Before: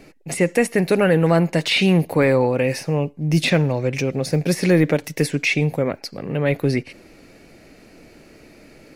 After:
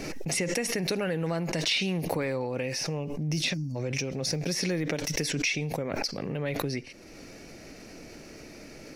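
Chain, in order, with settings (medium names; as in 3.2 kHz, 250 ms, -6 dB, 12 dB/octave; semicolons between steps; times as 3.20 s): compression 2:1, threshold -40 dBFS, peak gain reduction 15.5 dB; peaking EQ 5.7 kHz +10.5 dB 0.35 oct; time-frequency box 3.54–3.76 s, 330–4400 Hz -28 dB; dynamic bell 3.7 kHz, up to +5 dB, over -49 dBFS, Q 1; swell ahead of each attack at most 25 dB/s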